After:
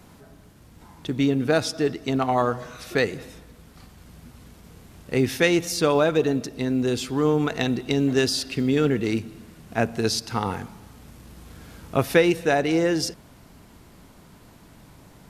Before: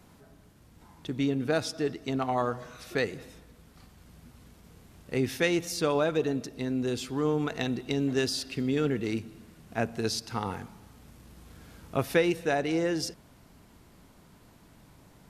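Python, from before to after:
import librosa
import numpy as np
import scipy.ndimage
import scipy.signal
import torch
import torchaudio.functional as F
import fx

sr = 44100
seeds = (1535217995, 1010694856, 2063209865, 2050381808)

y = fx.quant_float(x, sr, bits=6)
y = F.gain(torch.from_numpy(y), 6.5).numpy()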